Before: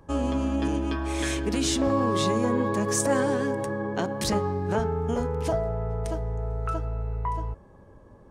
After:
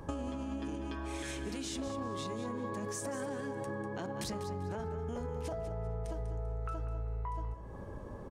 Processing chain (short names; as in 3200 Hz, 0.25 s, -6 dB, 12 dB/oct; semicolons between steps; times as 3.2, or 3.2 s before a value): limiter -22.5 dBFS, peak gain reduction 10 dB; compressor 16:1, threshold -41 dBFS, peak gain reduction 15.5 dB; feedback echo 0.196 s, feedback 26%, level -11 dB; gain +6 dB